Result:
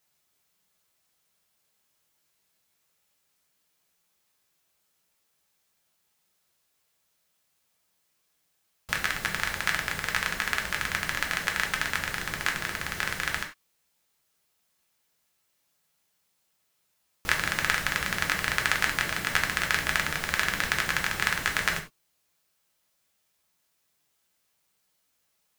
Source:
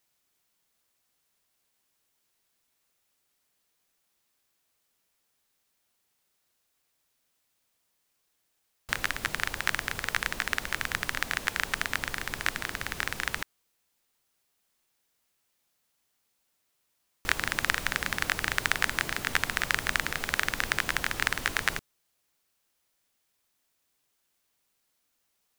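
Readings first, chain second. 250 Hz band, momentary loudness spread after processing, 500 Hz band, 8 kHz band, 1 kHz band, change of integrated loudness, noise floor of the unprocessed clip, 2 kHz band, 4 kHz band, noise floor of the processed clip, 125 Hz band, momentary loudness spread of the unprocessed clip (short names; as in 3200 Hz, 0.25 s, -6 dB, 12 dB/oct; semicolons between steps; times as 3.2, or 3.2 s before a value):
+2.5 dB, 5 LU, +2.0 dB, +2.0 dB, +2.5 dB, +2.0 dB, -76 dBFS, +2.0 dB, +2.0 dB, -74 dBFS, +3.0 dB, 5 LU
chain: non-linear reverb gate 0.12 s falling, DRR 2 dB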